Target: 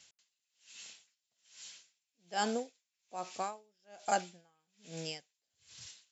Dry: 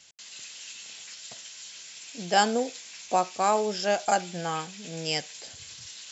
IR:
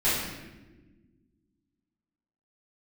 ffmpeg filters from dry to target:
-af "aeval=exprs='val(0)*pow(10,-39*(0.5-0.5*cos(2*PI*1.2*n/s))/20)':c=same,volume=-6dB"

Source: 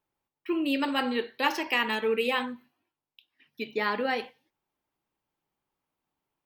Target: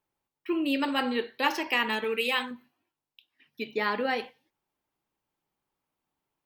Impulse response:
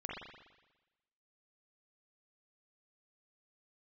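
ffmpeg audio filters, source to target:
-filter_complex "[0:a]asettb=1/sr,asplit=3[a][b][c];[a]atrim=end=2.044[d];[b]atrim=start=2.04:end=2.51,asetpts=PTS-STARTPTS,afade=t=in:d=0.004:c=qsin,afade=t=out:st=0.466:d=0.004:c=qsin,tiltshelf=f=1.4k:g=-5[e];[c]atrim=start=2.506[f];[d][e]acrossfade=d=0.004:c1=hsin:c2=qsin[g];[g][f]acrossfade=d=0.004:c1=qsin:c2=hsin"

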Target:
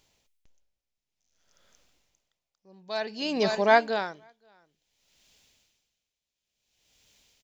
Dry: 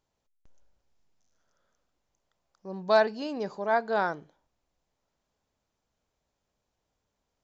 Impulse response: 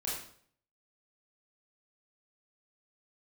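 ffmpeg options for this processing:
-af "asetnsamples=n=441:p=0,asendcmd='4.15 highshelf g 13.5',highshelf=f=1.8k:t=q:w=1.5:g=7.5,aecho=1:1:525:0.133,aeval=exprs='val(0)*pow(10,-25*(0.5-0.5*cos(2*PI*0.56*n/s))/20)':c=same,volume=9dB"

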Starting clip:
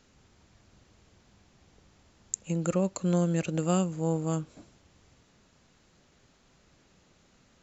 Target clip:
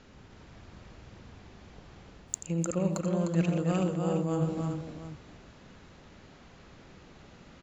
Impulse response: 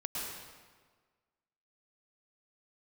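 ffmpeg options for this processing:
-af "areverse,acompressor=threshold=-36dB:ratio=6,areverse,aecho=1:1:84|119|303|376|716:0.355|0.266|0.631|0.447|0.2,adynamicsmooth=sensitivity=7:basefreq=4.4k,volume=8.5dB" -ar 44100 -c:a wmav2 -b:a 128k

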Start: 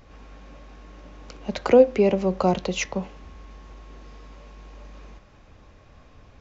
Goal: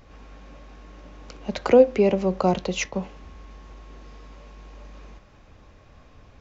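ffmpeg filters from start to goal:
-filter_complex "[0:a]asettb=1/sr,asplit=3[a][b][c];[a]atrim=end=2.414[d];[b]atrim=start=2.41:end=2.94,asetpts=PTS-STARTPTS,afade=t=in:d=0.004:c=qsin,afade=t=out:st=0.526:d=0.004:c=qsin,agate=range=-33dB:threshold=-28dB:ratio=3:detection=peak[e];[c]atrim=start=2.936[f];[d][e]acrossfade=d=0.004:c1=hsin:c2=qsin[g];[g][f]acrossfade=d=0.004:c1=qsin:c2=hsin"

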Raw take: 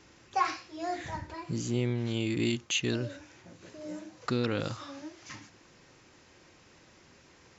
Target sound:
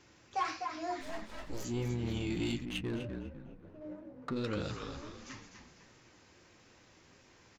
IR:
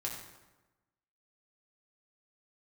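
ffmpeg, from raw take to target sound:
-filter_complex "[0:a]asplit=3[a][b][c];[a]afade=t=out:st=1:d=0.02[d];[b]aeval=exprs='abs(val(0))':c=same,afade=t=in:st=1:d=0.02,afade=t=out:st=1.63:d=0.02[e];[c]afade=t=in:st=1.63:d=0.02[f];[d][e][f]amix=inputs=3:normalize=0,asplit=5[g][h][i][j][k];[h]adelay=249,afreqshift=-47,volume=-7.5dB[l];[i]adelay=498,afreqshift=-94,volume=-15.9dB[m];[j]adelay=747,afreqshift=-141,volume=-24.3dB[n];[k]adelay=996,afreqshift=-188,volume=-32.7dB[o];[g][l][m][n][o]amix=inputs=5:normalize=0,asoftclip=type=tanh:threshold=-22.5dB,flanger=delay=7.7:depth=4.7:regen=-47:speed=1.5:shape=triangular,asplit=3[p][q][r];[p]afade=t=out:st=2.64:d=0.02[s];[q]adynamicsmooth=sensitivity=4.5:basefreq=930,afade=t=in:st=2.64:d=0.02,afade=t=out:st=4.35:d=0.02[t];[r]afade=t=in:st=4.35:d=0.02[u];[s][t][u]amix=inputs=3:normalize=0"

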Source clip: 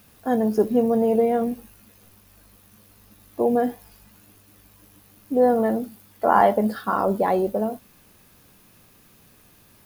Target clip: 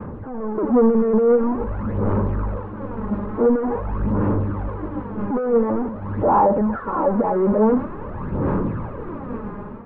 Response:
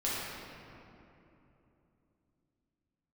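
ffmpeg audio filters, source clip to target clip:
-af "aeval=exprs='val(0)+0.5*0.0944*sgn(val(0))':c=same,asuperstop=centerf=700:order=8:qfactor=6.2,lowshelf=f=240:g=-7,acompressor=threshold=-19dB:ratio=6,asoftclip=type=tanh:threshold=-27.5dB,aphaser=in_gain=1:out_gain=1:delay=4.9:decay=0.55:speed=0.47:type=sinusoidal,lowpass=f=1.1k:w=0.5412,lowpass=f=1.1k:w=1.3066,agate=range=-33dB:threshold=-31dB:ratio=3:detection=peak,dynaudnorm=f=200:g=5:m=11dB,volume=-1dB"

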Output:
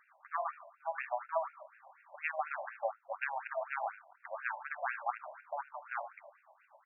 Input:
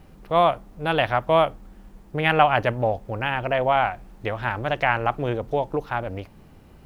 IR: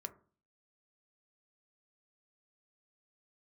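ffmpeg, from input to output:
-filter_complex "[1:a]atrim=start_sample=2205[a];[0:a][a]afir=irnorm=-1:irlink=0,tremolo=f=8:d=0.54,acompressor=threshold=-38dB:ratio=5,asplit=3[b][c][d];[b]afade=t=out:st=3.9:d=0.02[e];[c]asubboost=boost=6:cutoff=230,afade=t=in:st=3.9:d=0.02,afade=t=out:st=4.3:d=0.02[f];[d]afade=t=in:st=4.3:d=0.02[g];[e][f][g]amix=inputs=3:normalize=0,aeval=exprs='0.0891*(cos(1*acos(clip(val(0)/0.0891,-1,1)))-cos(1*PI/2))+0.0316*(cos(2*acos(clip(val(0)/0.0891,-1,1)))-cos(2*PI/2))+0.0158*(cos(3*acos(clip(val(0)/0.0891,-1,1)))-cos(3*PI/2))':c=same,asettb=1/sr,asplit=3[h][i][j];[h]atrim=end=1.424[k];[i]atrim=start=1.42:end=2.16,asetpts=PTS-STARTPTS,afade=t=in:d=0.004:c=qsin,afade=t=out:st=0.736:d=0.004:c=qsin,acontrast=51[l];[j]atrim=start=2.156[m];[k][l]acrossfade=d=0.004:c1=hsin:c2=qsin[n];[n][m]acrossfade=d=0.004:c1=qsin:c2=hsin,asettb=1/sr,asplit=3[o][p][q];[o]atrim=end=5.044[r];[p]atrim=start=5.04:end=5.63,asetpts=PTS-STARTPTS,afade=t=in:d=0.004:c=qsin,afade=t=out:st=0.586:d=0.004:c=qsin,highshelf=f=2.5k:g=8.5[s];[q]atrim=start=5.626[t];[r][s]acrossfade=d=0.004:c1=hsin:c2=qsin[u];[u][t]acrossfade=d=0.004:c1=qsin:c2=hsin,aecho=1:1:51|78:0.188|0.224,afftfilt=real='re*between(b*sr/1024,740*pow(2000/740,0.5+0.5*sin(2*PI*4.1*pts/sr))/1.41,740*pow(2000/740,0.5+0.5*sin(2*PI*4.1*pts/sr))*1.41)':imag='im*between(b*sr/1024,740*pow(2000/740,0.5+0.5*sin(2*PI*4.1*pts/sr))/1.41,740*pow(2000/740,0.5+0.5*sin(2*PI*4.1*pts/sr))*1.41)':win_size=1024:overlap=0.75,volume=12dB"

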